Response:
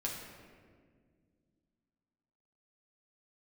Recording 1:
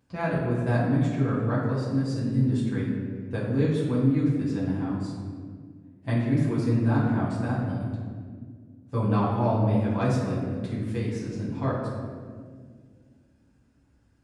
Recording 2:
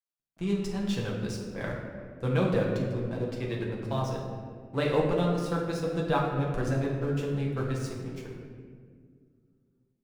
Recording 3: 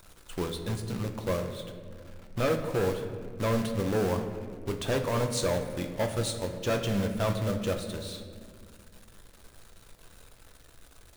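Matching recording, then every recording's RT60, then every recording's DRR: 2; 1.9, 1.9, 1.9 s; -8.5, -3.0, 4.5 dB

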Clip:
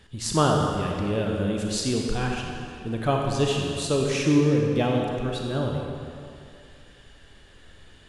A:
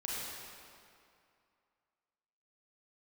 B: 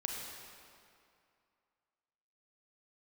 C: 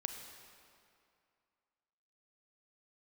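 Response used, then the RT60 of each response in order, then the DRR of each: B; 2.4, 2.4, 2.4 s; -6.0, 0.0, 5.0 dB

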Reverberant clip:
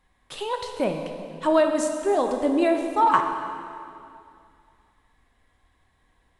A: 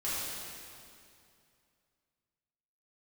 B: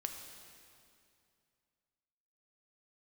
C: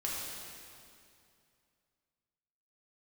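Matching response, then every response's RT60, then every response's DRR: B; 2.5, 2.5, 2.5 s; -10.5, 4.0, -5.5 dB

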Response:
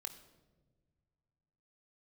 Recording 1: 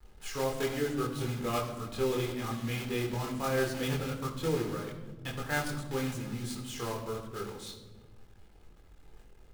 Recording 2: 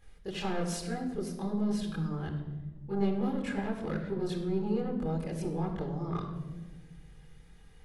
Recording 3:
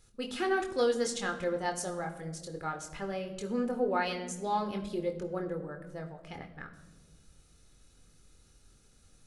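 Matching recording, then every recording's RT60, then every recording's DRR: 3; 1.3 s, 1.3 s, not exponential; -1.5, -6.0, 4.0 dB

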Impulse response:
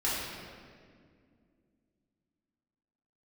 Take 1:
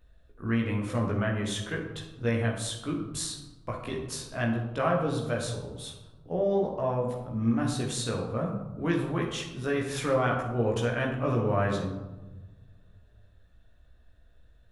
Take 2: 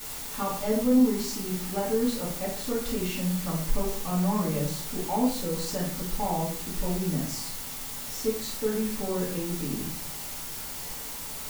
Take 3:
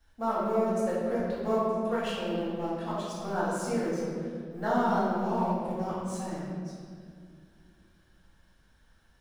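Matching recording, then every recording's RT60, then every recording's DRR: 3; 1.2, 0.50, 2.1 s; -2.0, -8.0, -9.5 dB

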